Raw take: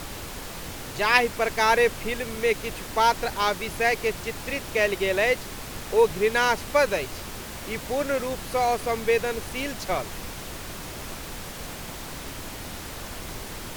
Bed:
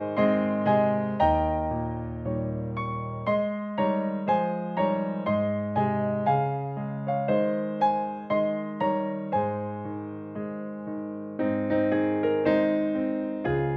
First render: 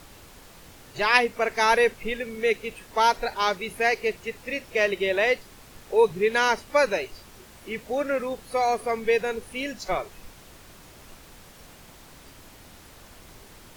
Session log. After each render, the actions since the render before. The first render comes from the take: noise print and reduce 12 dB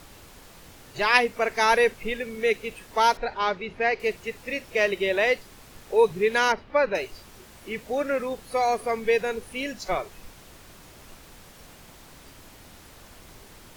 3.17–4.00 s: distance through air 190 m; 6.52–6.95 s: distance through air 310 m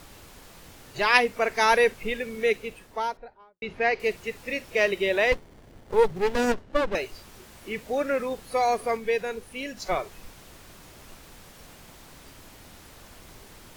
2.37–3.62 s: studio fade out; 5.32–6.95 s: sliding maximum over 33 samples; 8.97–9.77 s: gain -3.5 dB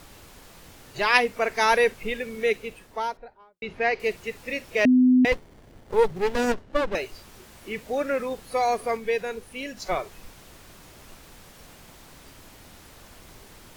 4.85–5.25 s: bleep 253 Hz -13.5 dBFS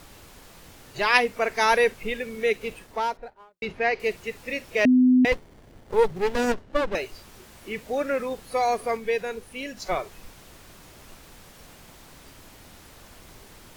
2.61–3.72 s: waveshaping leveller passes 1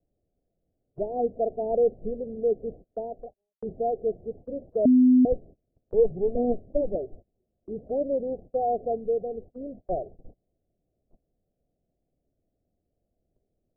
steep low-pass 730 Hz 96 dB/octave; gate -43 dBFS, range -27 dB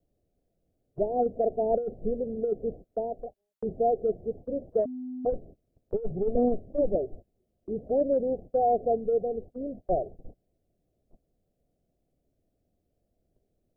compressor with a negative ratio -24 dBFS, ratio -0.5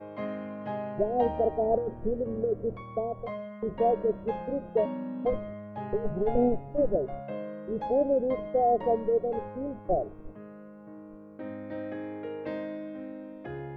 add bed -12.5 dB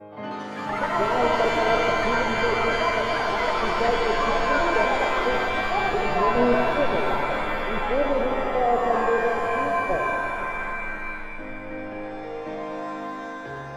ever faster or slower copies 113 ms, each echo +6 st, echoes 3; pitch-shifted reverb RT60 3.3 s, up +7 st, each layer -2 dB, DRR 2 dB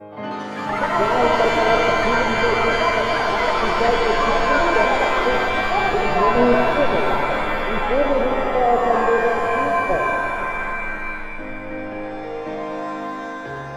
trim +4.5 dB

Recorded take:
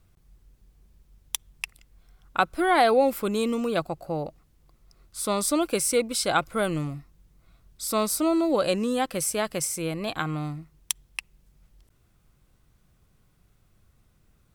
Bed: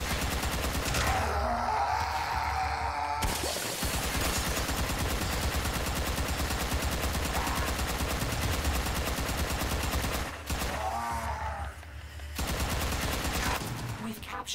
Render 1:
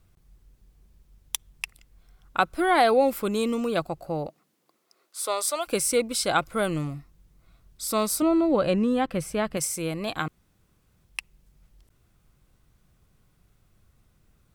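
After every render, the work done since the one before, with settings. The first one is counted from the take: 4.27–5.66 s: high-pass 160 Hz -> 600 Hz 24 dB/octave; 8.22–9.57 s: tone controls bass +7 dB, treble -13 dB; 10.28–11.05 s: room tone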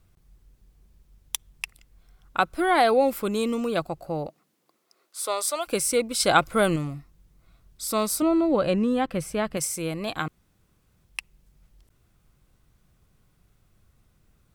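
6.20–6.76 s: gain +4.5 dB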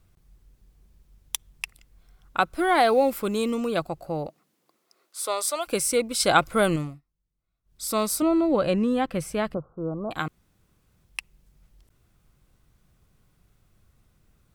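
2.53–3.51 s: companded quantiser 8-bit; 6.81–7.84 s: dip -23.5 dB, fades 0.20 s; 9.54–10.11 s: steep low-pass 1.4 kHz 96 dB/octave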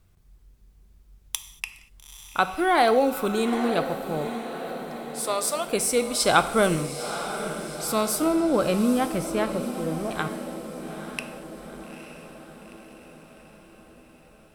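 echo that smears into a reverb 882 ms, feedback 57%, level -10 dB; gated-style reverb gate 260 ms falling, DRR 9.5 dB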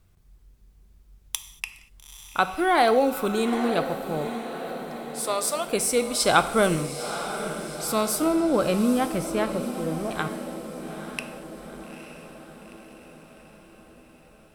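no audible change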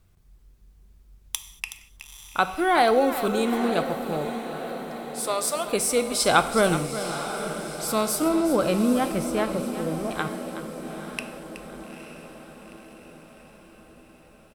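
delay 372 ms -12 dB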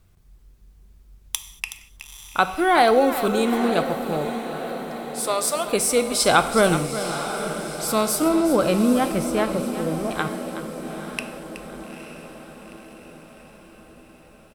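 trim +3 dB; peak limiter -3 dBFS, peak gain reduction 1.5 dB

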